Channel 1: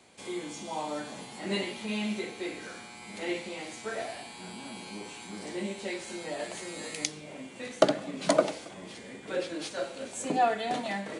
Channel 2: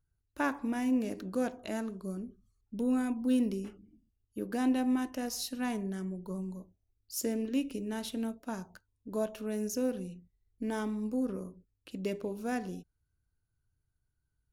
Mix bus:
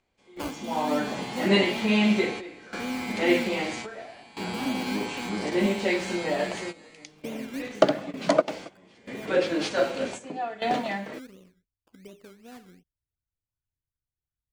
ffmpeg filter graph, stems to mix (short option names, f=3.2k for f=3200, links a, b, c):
-filter_complex "[0:a]dynaudnorm=f=180:g=9:m=12dB,lowpass=5k,equalizer=f=3.8k:t=o:w=0.33:g=-3.5,volume=-1dB[a];[1:a]lowpass=f=2.9k:w=0.5412,lowpass=f=2.9k:w=1.3066,acrusher=samples=19:mix=1:aa=0.000001:lfo=1:lforange=11.4:lforate=2.7,volume=-4dB,afade=t=out:st=7.54:d=0.43:silence=0.375837,asplit=2[b][c];[c]apad=whole_len=493899[d];[a][d]sidechaingate=range=-16dB:threshold=-58dB:ratio=16:detection=peak[e];[e][b]amix=inputs=2:normalize=0"